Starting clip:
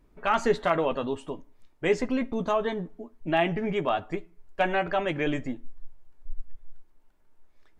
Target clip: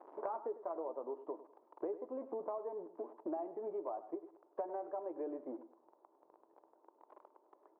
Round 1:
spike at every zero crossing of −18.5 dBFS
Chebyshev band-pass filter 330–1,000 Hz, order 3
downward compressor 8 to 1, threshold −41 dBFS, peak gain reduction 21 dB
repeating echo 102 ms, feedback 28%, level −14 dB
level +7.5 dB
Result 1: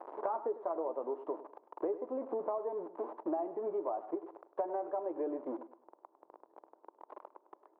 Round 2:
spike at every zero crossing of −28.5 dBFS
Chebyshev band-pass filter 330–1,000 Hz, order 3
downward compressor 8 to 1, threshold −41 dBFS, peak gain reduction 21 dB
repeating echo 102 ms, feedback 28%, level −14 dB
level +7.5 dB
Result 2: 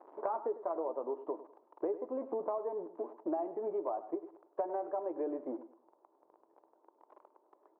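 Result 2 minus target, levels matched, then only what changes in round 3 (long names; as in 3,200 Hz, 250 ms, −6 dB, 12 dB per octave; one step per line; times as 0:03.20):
downward compressor: peak gain reduction −5 dB
change: downward compressor 8 to 1, threshold −47 dBFS, peak gain reduction 26.5 dB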